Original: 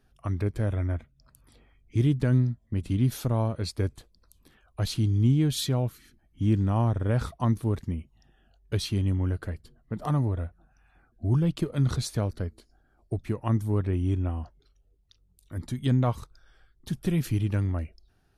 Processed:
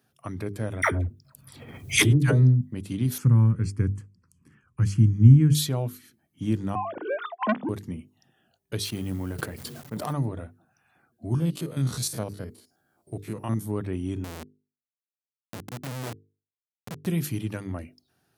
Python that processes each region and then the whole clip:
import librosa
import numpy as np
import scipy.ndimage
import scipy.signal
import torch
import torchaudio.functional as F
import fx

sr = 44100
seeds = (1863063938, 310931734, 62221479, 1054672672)

y = fx.chain(x, sr, fx.peak_eq(hz=64.0, db=12.5, octaves=2.0),
    fx.dispersion(late='lows', ms=98.0, hz=730.0),
    fx.pre_swell(db_per_s=49.0), at=(0.82, 2.61))
y = fx.chain(y, sr, fx.lowpass(hz=8400.0, slope=24),
    fx.bass_treble(bass_db=13, treble_db=-1),
    fx.fixed_phaser(hz=1600.0, stages=4), at=(3.18, 5.55))
y = fx.chain(y, sr, fx.sine_speech(),
    fx.transformer_sat(knee_hz=1000.0), at=(6.75, 7.69))
y = fx.chain(y, sr, fx.law_mismatch(coded='A'),
    fx.sustainer(db_per_s=24.0), at=(8.84, 10.13))
y = fx.chain(y, sr, fx.spec_steps(hold_ms=50),
    fx.high_shelf(hz=4800.0, db=6.5), at=(11.35, 13.66))
y = fx.chain(y, sr, fx.highpass(hz=75.0, slope=6),
    fx.schmitt(flips_db=-32.5),
    fx.doppler_dist(depth_ms=0.58), at=(14.24, 17.06))
y = scipy.signal.sosfilt(scipy.signal.butter(4, 110.0, 'highpass', fs=sr, output='sos'), y)
y = fx.high_shelf(y, sr, hz=8500.0, db=10.5)
y = fx.hum_notches(y, sr, base_hz=50, count=9)